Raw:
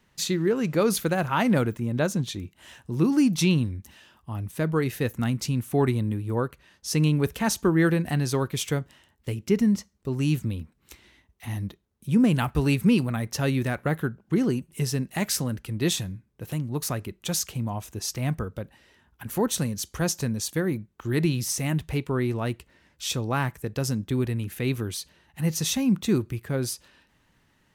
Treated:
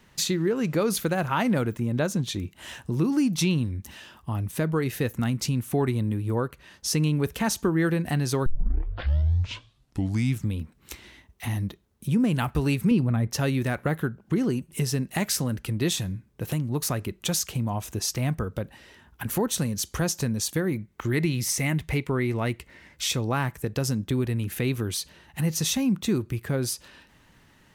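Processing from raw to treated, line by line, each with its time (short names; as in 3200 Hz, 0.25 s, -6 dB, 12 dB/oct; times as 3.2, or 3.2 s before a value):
8.46 tape start 2.13 s
12.91–13.31 tilt -2.5 dB/oct
20.72–23.23 bell 2100 Hz +9 dB 0.26 oct
whole clip: compressor 2:1, threshold -36 dBFS; gain +7.5 dB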